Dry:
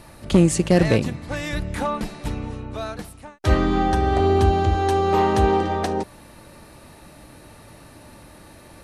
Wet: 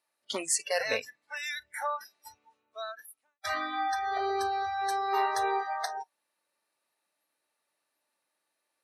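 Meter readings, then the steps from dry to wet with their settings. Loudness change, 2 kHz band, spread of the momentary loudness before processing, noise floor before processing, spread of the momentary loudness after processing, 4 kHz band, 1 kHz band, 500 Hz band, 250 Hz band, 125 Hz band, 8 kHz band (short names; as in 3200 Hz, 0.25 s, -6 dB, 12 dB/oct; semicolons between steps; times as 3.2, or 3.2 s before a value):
-10.5 dB, -4.0 dB, 14 LU, -47 dBFS, 13 LU, -5.0 dB, -7.0 dB, -14.5 dB, -25.0 dB, under -35 dB, -1.5 dB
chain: HPF 460 Hz 12 dB/oct; spectral noise reduction 29 dB; tilt shelf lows -4.5 dB, about 1100 Hz; gain -5 dB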